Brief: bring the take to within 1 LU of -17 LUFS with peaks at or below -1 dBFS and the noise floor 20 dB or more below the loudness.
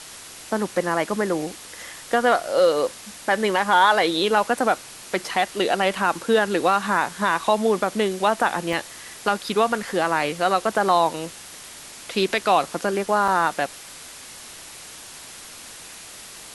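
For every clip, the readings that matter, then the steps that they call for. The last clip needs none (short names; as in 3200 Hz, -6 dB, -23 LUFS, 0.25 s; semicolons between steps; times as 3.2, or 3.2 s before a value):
dropouts 3; longest dropout 1.9 ms; noise floor -41 dBFS; noise floor target -42 dBFS; loudness -22.0 LUFS; peak -4.5 dBFS; loudness target -17.0 LUFS
-> interpolate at 4.59/8.73/13.28, 1.9 ms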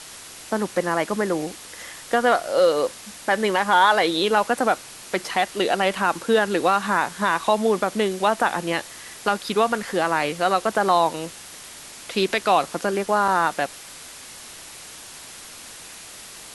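dropouts 0; noise floor -41 dBFS; noise floor target -42 dBFS
-> noise print and reduce 6 dB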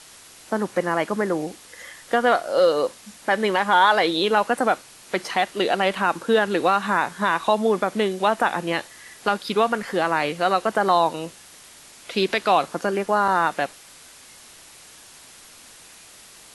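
noise floor -47 dBFS; loudness -22.0 LUFS; peak -4.5 dBFS; loudness target -17.0 LUFS
-> gain +5 dB; limiter -1 dBFS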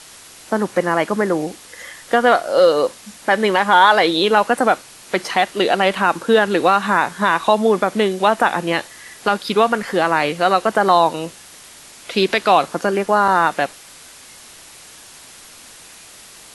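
loudness -17.0 LUFS; peak -1.0 dBFS; noise floor -42 dBFS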